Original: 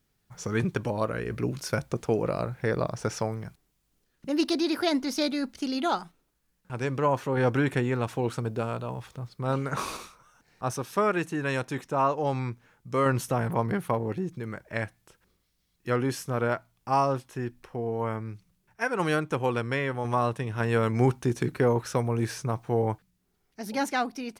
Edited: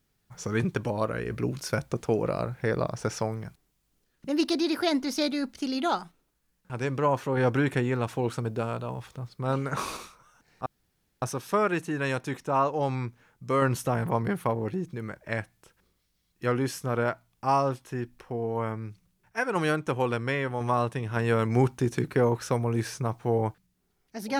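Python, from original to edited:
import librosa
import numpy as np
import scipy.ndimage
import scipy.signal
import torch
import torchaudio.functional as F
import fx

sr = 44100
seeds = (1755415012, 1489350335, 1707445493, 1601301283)

y = fx.edit(x, sr, fx.insert_room_tone(at_s=10.66, length_s=0.56), tone=tone)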